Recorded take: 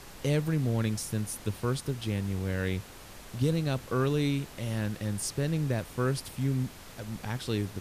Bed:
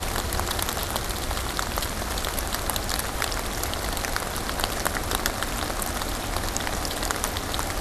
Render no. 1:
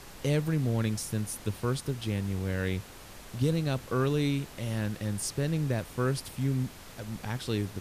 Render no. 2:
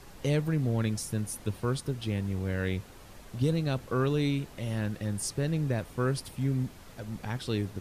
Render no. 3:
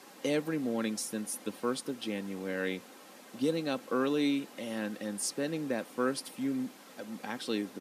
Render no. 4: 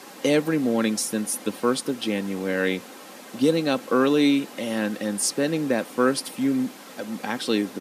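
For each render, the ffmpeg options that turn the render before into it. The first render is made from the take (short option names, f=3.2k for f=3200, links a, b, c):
-af anull
-af "afftdn=nr=6:nf=-48"
-af "highpass=f=220:w=0.5412,highpass=f=220:w=1.3066,aecho=1:1:3.8:0.33"
-af "volume=10dB"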